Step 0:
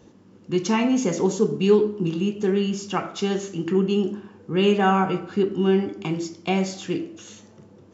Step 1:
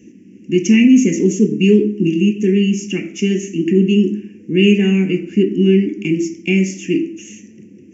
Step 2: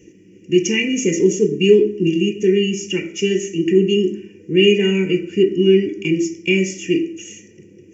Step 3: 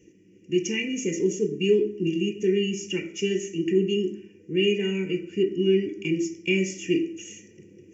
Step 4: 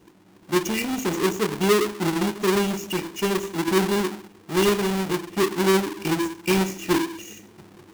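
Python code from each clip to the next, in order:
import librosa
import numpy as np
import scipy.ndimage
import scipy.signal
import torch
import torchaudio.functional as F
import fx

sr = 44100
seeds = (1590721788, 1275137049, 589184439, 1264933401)

y1 = fx.curve_eq(x, sr, hz=(120.0, 220.0, 330.0, 770.0, 1300.0, 1900.0, 2700.0, 3900.0, 5900.0, 8400.0), db=(0, 14, 13, -21, -24, 9, 14, -17, 10, 5))
y1 = y1 * librosa.db_to_amplitude(-1.5)
y2 = y1 + 0.85 * np.pad(y1, (int(2.1 * sr / 1000.0), 0))[:len(y1)]
y2 = y2 * librosa.db_to_amplitude(-1.0)
y3 = fx.rider(y2, sr, range_db=10, speed_s=2.0)
y3 = y3 * librosa.db_to_amplitude(-8.5)
y4 = fx.halfwave_hold(y3, sr)
y4 = y4 * librosa.db_to_amplitude(-2.0)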